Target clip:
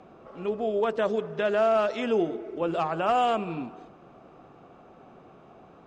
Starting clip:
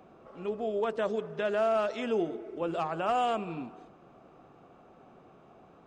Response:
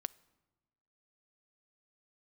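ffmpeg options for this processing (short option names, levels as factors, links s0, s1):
-af "lowpass=7500,volume=1.68"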